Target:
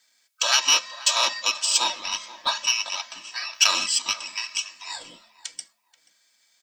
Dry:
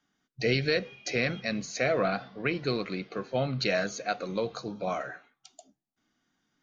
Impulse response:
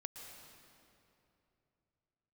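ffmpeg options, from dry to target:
-filter_complex "[0:a]equalizer=f=1200:w=3.6:g=-7.5,aecho=1:1:3:0.87,bandreject=f=404.2:t=h:w=4,bandreject=f=808.4:t=h:w=4,bandreject=f=1212.6:t=h:w=4,bandreject=f=1616.8:t=h:w=4,bandreject=f=2021:t=h:w=4,bandreject=f=2425.2:t=h:w=4,bandreject=f=2829.4:t=h:w=4,bandreject=f=3233.6:t=h:w=4,bandreject=f=3637.8:t=h:w=4,bandreject=f=4042:t=h:w=4,bandreject=f=4446.2:t=h:w=4,acrossover=split=1500[s0][s1];[s0]acompressor=threshold=0.0112:ratio=6[s2];[s2][s1]amix=inputs=2:normalize=0,aexciter=amount=14.1:drive=9.1:freq=2100,aeval=exprs='val(0)*sin(2*PI*1400*n/s)':c=same,asplit=2[s3][s4];[s4]adelay=482,lowpass=f=1700:p=1,volume=0.158,asplit=2[s5][s6];[s6]adelay=482,lowpass=f=1700:p=1,volume=0.21[s7];[s5][s7]amix=inputs=2:normalize=0[s8];[s3][s8]amix=inputs=2:normalize=0,volume=0.266"

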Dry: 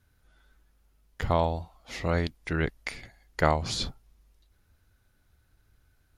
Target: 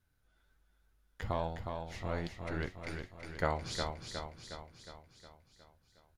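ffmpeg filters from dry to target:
-filter_complex "[0:a]asettb=1/sr,asplit=3[s0][s1][s2];[s0]atrim=end=1.324[s3];[s1]atrim=start=1.32:end=3.41,asetpts=PTS-STARTPTS,afade=t=in:d=0.004:c=qsin,afade=t=out:st=2.086:d=0.004:c=qsin,aeval=exprs='if(lt(val(0),0),0.708*val(0),val(0))':c=same[s4];[s2]atrim=start=3.406[s5];[s3][s4]acrossfade=d=0.004:c1=hsin:c2=qsin[s6];[s6][s5]acrossfade=d=0.004:c1=qsin:c2=hsin,flanger=delay=5.5:depth=5.5:regen=63:speed=1.3:shape=sinusoidal,asplit=2[s7][s8];[s8]aecho=0:1:362|724|1086|1448|1810|2172|2534:0.531|0.297|0.166|0.0932|0.0522|0.0292|0.0164[s9];[s7][s9]amix=inputs=2:normalize=0,volume=0.562"

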